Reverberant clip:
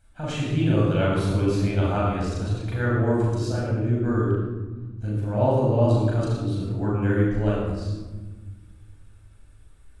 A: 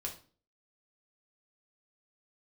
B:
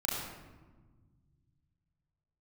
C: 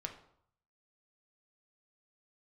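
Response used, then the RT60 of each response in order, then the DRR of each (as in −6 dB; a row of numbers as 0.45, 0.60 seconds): B; 0.40, 1.3, 0.65 seconds; −0.5, −6.0, 3.0 decibels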